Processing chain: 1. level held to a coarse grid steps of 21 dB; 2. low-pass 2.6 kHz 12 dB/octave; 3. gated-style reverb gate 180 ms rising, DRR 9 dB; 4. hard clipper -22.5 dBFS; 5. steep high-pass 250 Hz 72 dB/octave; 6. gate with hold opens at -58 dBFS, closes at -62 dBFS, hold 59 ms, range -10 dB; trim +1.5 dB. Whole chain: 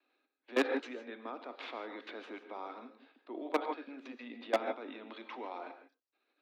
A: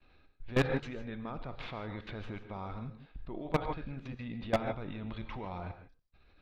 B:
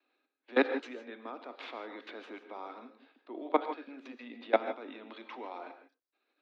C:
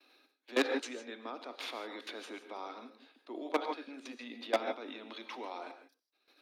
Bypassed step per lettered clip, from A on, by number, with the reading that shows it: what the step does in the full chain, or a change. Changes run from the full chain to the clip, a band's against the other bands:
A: 5, 250 Hz band +3.0 dB; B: 4, distortion -8 dB; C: 2, 4 kHz band +5.5 dB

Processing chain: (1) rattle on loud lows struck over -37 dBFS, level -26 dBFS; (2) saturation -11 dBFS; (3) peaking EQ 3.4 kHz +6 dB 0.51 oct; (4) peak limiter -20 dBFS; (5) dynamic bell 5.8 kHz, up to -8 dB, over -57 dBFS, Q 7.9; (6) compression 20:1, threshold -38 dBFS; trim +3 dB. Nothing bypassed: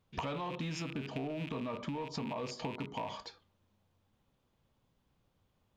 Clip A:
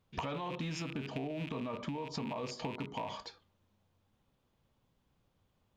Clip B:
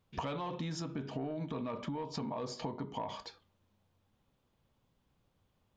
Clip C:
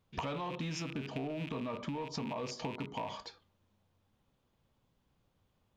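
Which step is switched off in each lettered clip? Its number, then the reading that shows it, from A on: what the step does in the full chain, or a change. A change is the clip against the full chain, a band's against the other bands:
2, distortion -20 dB; 1, 2 kHz band -6.0 dB; 5, 8 kHz band +2.5 dB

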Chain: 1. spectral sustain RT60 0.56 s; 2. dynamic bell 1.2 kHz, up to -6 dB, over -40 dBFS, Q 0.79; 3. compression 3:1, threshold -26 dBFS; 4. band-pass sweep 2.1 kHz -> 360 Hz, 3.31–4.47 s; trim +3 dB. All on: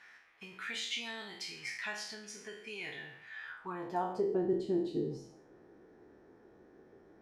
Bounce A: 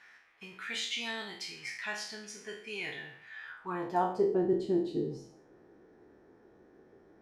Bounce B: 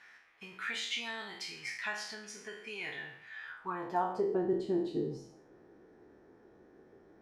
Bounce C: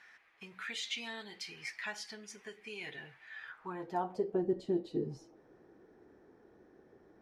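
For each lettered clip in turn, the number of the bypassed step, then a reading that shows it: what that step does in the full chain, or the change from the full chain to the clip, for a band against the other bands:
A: 3, mean gain reduction 1.5 dB; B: 2, 1 kHz band +3.0 dB; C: 1, crest factor change +2.0 dB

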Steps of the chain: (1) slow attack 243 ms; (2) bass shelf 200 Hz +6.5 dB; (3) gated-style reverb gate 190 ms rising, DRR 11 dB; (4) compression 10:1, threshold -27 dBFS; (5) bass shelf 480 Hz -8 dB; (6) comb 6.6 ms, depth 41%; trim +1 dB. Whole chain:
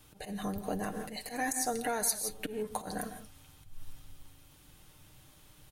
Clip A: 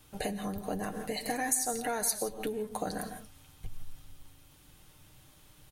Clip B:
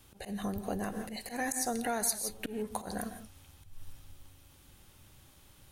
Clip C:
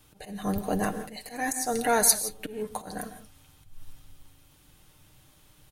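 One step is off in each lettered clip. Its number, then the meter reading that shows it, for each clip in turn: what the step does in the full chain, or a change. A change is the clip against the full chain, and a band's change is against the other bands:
1, momentary loudness spread change +10 LU; 6, 250 Hz band +2.0 dB; 4, mean gain reduction 2.0 dB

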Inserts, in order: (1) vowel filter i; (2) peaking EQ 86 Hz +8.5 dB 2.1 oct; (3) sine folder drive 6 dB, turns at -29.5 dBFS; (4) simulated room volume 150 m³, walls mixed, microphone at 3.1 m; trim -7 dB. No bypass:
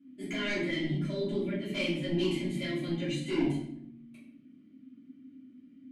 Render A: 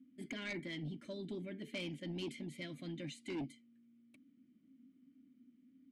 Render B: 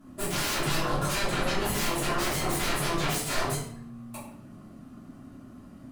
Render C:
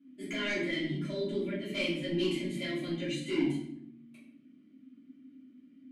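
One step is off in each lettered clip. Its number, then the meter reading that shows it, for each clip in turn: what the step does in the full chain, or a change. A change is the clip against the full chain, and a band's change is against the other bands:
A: 4, echo-to-direct 11.0 dB to none; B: 1, 8 kHz band +16.0 dB; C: 2, 125 Hz band -4.0 dB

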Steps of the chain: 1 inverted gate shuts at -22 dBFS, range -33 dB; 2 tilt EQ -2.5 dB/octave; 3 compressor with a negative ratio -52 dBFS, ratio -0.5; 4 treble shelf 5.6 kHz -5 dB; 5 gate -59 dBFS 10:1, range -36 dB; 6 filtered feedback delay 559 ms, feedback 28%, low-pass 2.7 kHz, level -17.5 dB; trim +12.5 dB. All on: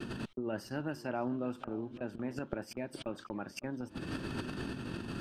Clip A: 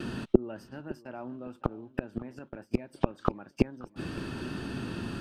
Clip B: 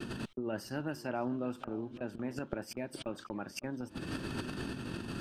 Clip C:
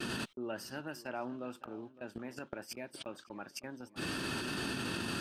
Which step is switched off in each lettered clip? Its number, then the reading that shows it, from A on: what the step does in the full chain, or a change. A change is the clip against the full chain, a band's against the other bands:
3, crest factor change +8.0 dB; 4, 8 kHz band +3.5 dB; 2, 8 kHz band +9.0 dB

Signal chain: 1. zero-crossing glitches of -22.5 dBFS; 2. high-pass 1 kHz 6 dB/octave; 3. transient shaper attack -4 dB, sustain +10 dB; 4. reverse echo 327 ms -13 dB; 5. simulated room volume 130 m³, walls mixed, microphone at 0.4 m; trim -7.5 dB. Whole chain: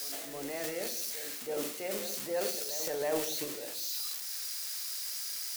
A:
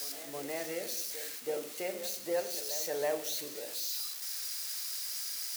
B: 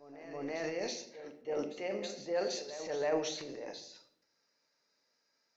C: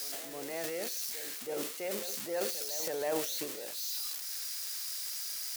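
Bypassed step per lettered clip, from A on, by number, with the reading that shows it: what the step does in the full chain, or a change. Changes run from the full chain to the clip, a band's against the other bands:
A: 3, crest factor change -3.0 dB; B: 1, distortion -6 dB; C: 5, echo-to-direct -7.0 dB to none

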